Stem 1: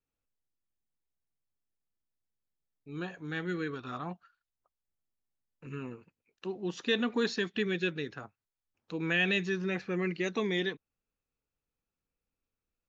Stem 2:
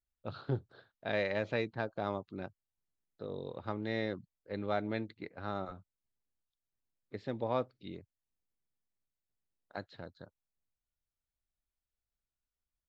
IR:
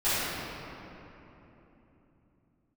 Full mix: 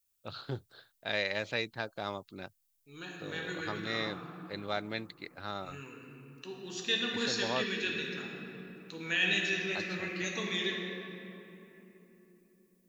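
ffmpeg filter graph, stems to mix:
-filter_complex "[0:a]volume=-12.5dB,asplit=2[link_01][link_02];[link_02]volume=-12dB[link_03];[1:a]volume=-4.5dB[link_04];[2:a]atrim=start_sample=2205[link_05];[link_03][link_05]afir=irnorm=-1:irlink=0[link_06];[link_01][link_04][link_06]amix=inputs=3:normalize=0,crystalizer=i=8.5:c=0"

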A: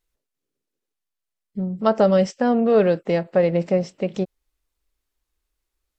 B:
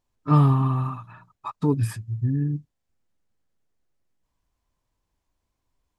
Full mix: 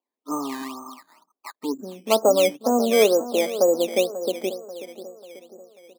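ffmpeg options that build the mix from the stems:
ffmpeg -i stem1.wav -i stem2.wav -filter_complex "[0:a]adelay=250,volume=0dB,asplit=2[link_01][link_02];[link_02]volume=-13.5dB[link_03];[1:a]volume=-4dB[link_04];[link_03]aecho=0:1:539|1078|1617|2156|2695|3234|3773:1|0.47|0.221|0.104|0.0488|0.0229|0.0108[link_05];[link_01][link_04][link_05]amix=inputs=3:normalize=0,asuperpass=centerf=540:order=12:qfactor=0.55,acrusher=samples=11:mix=1:aa=0.000001:lfo=1:lforange=11:lforate=2.1" out.wav

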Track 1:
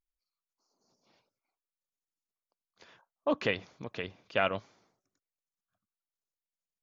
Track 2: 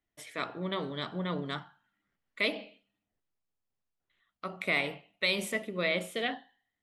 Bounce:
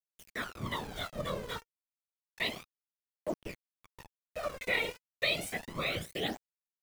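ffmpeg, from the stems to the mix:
ffmpeg -i stem1.wav -i stem2.wav -filter_complex "[0:a]lowpass=frequency=1100:poles=1,acontrast=49,volume=-12dB,asplit=2[link_01][link_02];[link_02]volume=-19.5dB[link_03];[1:a]adynamicequalizer=threshold=0.00282:dfrequency=240:dqfactor=2.3:tfrequency=240:tqfactor=2.3:attack=5:release=100:ratio=0.375:range=2:mode=cutabove:tftype=bell,volume=2.5dB[link_04];[link_03]aecho=0:1:143:1[link_05];[link_01][link_04][link_05]amix=inputs=3:normalize=0,afftfilt=real='hypot(re,im)*cos(2*PI*random(0))':imag='hypot(re,im)*sin(2*PI*random(1))':win_size=512:overlap=0.75,aeval=exprs='val(0)*gte(abs(val(0)),0.00631)':channel_layout=same,aphaser=in_gain=1:out_gain=1:delay=2.2:decay=0.66:speed=0.31:type=triangular" out.wav

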